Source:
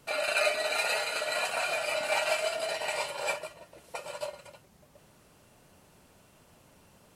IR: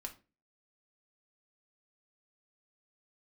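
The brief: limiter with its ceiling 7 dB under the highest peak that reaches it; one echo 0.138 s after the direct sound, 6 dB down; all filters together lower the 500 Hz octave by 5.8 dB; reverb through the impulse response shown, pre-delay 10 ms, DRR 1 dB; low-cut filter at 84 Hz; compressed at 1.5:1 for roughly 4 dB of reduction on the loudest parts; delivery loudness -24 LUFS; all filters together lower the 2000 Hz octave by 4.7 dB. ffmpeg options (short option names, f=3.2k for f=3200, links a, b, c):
-filter_complex "[0:a]highpass=84,equalizer=f=500:t=o:g=-7.5,equalizer=f=2k:t=o:g=-6,acompressor=threshold=-38dB:ratio=1.5,alimiter=level_in=5dB:limit=-24dB:level=0:latency=1,volume=-5dB,aecho=1:1:138:0.501,asplit=2[a][b];[1:a]atrim=start_sample=2205,adelay=10[c];[b][c]afir=irnorm=-1:irlink=0,volume=2dB[d];[a][d]amix=inputs=2:normalize=0,volume=11.5dB"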